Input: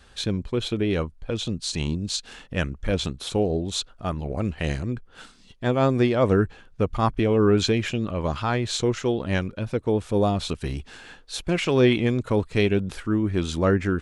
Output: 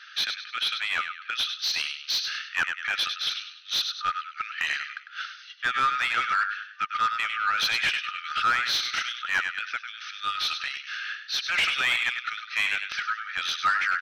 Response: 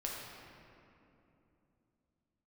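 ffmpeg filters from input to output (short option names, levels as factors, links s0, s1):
-filter_complex "[0:a]asplit=5[s0][s1][s2][s3][s4];[s1]adelay=100,afreqshift=42,volume=0.316[s5];[s2]adelay=200,afreqshift=84,volume=0.111[s6];[s3]adelay=300,afreqshift=126,volume=0.0389[s7];[s4]adelay=400,afreqshift=168,volume=0.0135[s8];[s0][s5][s6][s7][s8]amix=inputs=5:normalize=0,afftfilt=real='re*between(b*sr/4096,1200,6300)':imag='im*between(b*sr/4096,1200,6300)':win_size=4096:overlap=0.75,asplit=2[s9][s10];[s10]highpass=f=720:p=1,volume=10,asoftclip=type=tanh:threshold=0.251[s11];[s9][s11]amix=inputs=2:normalize=0,lowpass=f=2400:p=1,volume=0.501"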